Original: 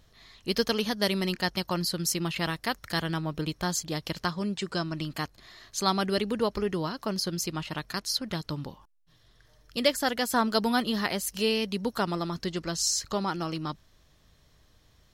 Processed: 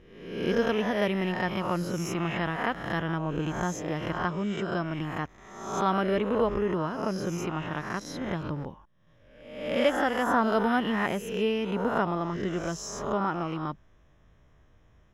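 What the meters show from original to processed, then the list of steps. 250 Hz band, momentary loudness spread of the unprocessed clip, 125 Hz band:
+1.5 dB, 8 LU, +1.0 dB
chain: spectral swells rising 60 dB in 0.85 s; running mean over 10 samples

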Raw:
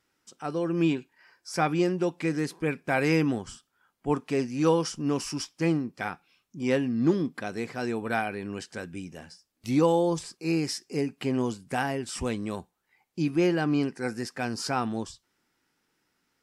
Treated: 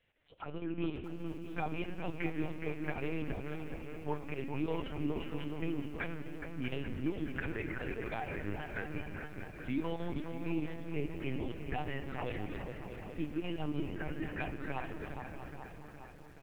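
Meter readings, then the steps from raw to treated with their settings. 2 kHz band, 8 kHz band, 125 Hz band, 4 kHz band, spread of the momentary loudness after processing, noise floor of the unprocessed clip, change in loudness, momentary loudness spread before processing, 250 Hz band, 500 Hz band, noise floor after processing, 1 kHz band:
-8.0 dB, under -25 dB, -8.0 dB, -12.5 dB, 7 LU, -77 dBFS, -11.5 dB, 13 LU, -11.0 dB, -12.5 dB, -51 dBFS, -11.0 dB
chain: LPF 3000 Hz 24 dB/oct; tilt +2 dB/oct; comb 6.7 ms, depth 65%; de-hum 91.62 Hz, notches 8; dynamic EQ 390 Hz, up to -3 dB, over -33 dBFS, Q 0.85; compressor 3:1, threshold -39 dBFS, peak gain reduction 15 dB; envelope phaser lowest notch 200 Hz, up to 1800 Hz, full sweep at -34 dBFS; chopper 6.4 Hz, depth 65%, duty 75%; on a send: dark delay 0.417 s, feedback 62%, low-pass 2200 Hz, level -6 dB; on the sum: Schroeder reverb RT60 3.1 s, combs from 26 ms, DRR 9 dB; LPC vocoder at 8 kHz pitch kept; lo-fi delay 0.637 s, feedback 35%, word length 10-bit, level -11.5 dB; gain +4 dB

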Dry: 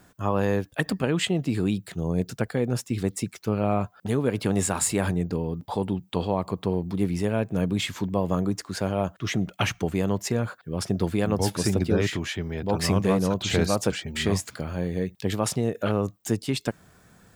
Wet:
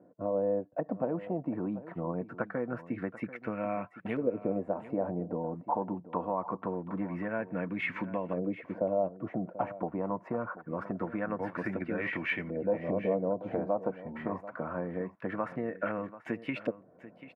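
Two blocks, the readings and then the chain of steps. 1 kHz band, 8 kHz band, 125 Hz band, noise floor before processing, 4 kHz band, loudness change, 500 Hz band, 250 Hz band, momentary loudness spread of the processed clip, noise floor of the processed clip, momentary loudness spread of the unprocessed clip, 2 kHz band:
-4.0 dB, under -40 dB, -14.5 dB, -58 dBFS, -22.5 dB, -8.0 dB, -5.0 dB, -8.5 dB, 6 LU, -58 dBFS, 6 LU, -5.5 dB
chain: HPF 240 Hz 12 dB/oct; band shelf 5200 Hz -13.5 dB; compressor 3:1, threshold -31 dBFS, peak gain reduction 9.5 dB; notch comb 410 Hz; LFO low-pass saw up 0.24 Hz 480–2600 Hz; echo 0.738 s -15.5 dB

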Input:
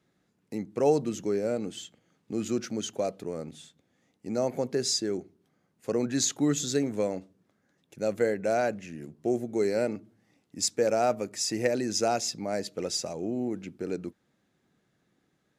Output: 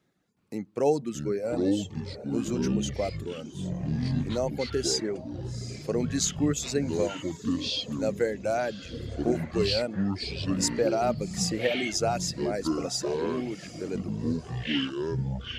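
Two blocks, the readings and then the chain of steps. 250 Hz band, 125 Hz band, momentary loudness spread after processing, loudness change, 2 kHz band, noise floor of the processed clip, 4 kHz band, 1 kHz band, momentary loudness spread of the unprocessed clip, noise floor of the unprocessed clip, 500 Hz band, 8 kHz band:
+3.0 dB, +8.5 dB, 10 LU, +0.5 dB, +3.0 dB, -45 dBFS, +3.5 dB, 0.0 dB, 13 LU, -74 dBFS, 0.0 dB, -0.5 dB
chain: diffused feedback echo 0.784 s, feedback 44%, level -13.5 dB; reverb removal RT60 1.1 s; echoes that change speed 0.367 s, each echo -7 st, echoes 3

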